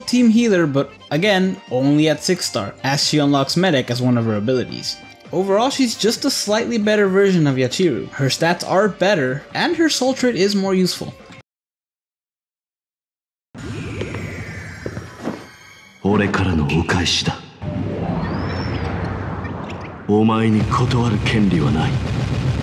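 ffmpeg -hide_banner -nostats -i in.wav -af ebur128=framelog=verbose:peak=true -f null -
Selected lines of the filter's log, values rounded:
Integrated loudness:
  I:         -18.1 LUFS
  Threshold: -28.7 LUFS
Loudness range:
  LRA:        13.8 LU
  Threshold: -39.4 LUFS
  LRA low:   -30.9 LUFS
  LRA high:  -17.1 LUFS
True peak:
  Peak:       -3.4 dBFS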